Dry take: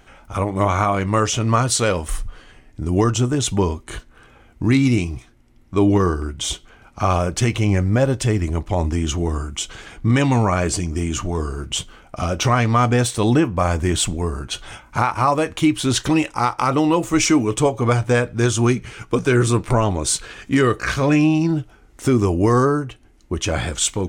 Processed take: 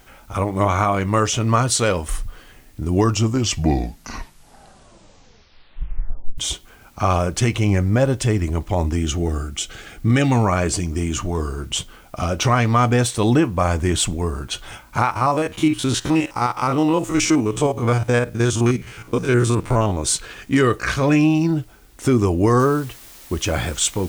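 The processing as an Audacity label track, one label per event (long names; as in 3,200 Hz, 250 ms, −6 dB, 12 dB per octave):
2.950000	2.950000	tape stop 3.43 s
8.970000	10.320000	Butterworth band-reject 1,000 Hz, Q 4
15.110000	20.040000	spectrum averaged block by block every 50 ms
22.600000	22.600000	noise floor change −57 dB −43 dB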